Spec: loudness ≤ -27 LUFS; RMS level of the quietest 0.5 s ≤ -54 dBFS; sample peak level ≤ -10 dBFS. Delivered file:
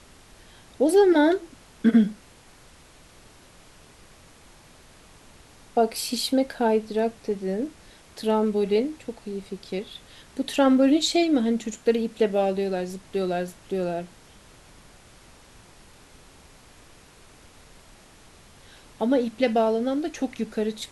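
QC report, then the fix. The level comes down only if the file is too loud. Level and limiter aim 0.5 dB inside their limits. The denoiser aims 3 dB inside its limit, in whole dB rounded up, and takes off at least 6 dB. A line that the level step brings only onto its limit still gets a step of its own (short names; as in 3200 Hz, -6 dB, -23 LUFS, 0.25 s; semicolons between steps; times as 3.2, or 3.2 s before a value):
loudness -24.0 LUFS: fail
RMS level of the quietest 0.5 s -51 dBFS: fail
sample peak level -8.5 dBFS: fail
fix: gain -3.5 dB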